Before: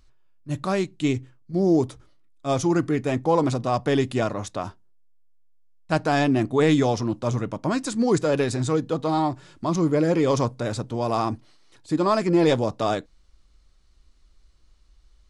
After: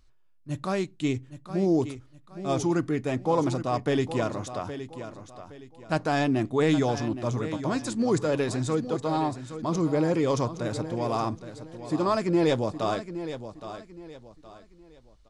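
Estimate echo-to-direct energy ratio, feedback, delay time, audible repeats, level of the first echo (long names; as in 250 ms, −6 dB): −11.0 dB, 32%, 817 ms, 3, −11.5 dB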